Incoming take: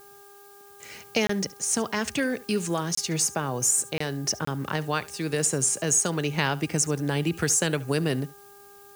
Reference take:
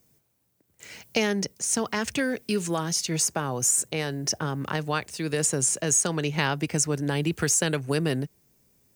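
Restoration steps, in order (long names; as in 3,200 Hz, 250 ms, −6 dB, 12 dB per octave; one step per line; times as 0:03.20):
hum removal 402.7 Hz, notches 4
repair the gap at 0:01.27/0:02.95/0:03.98/0:04.45, 24 ms
downward expander −42 dBFS, range −21 dB
echo removal 71 ms −20 dB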